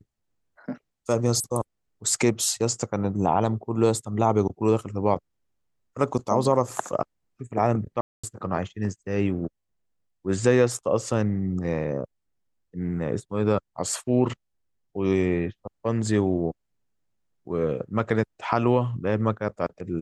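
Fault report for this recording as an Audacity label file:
8.010000	8.230000	dropout 225 ms

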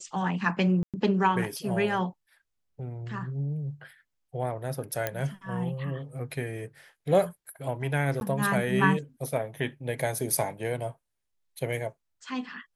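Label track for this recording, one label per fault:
0.830000	0.940000	dropout 107 ms
5.070000	5.070000	pop -13 dBFS
8.200000	8.210000	dropout

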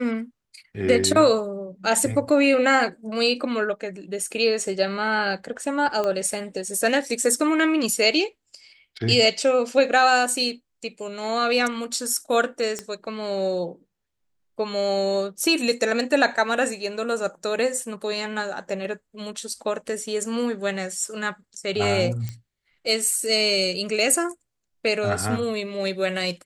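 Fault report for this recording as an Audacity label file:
6.040000	6.040000	pop -14 dBFS
12.790000	12.790000	pop -14 dBFS
22.290000	22.290000	pop -19 dBFS

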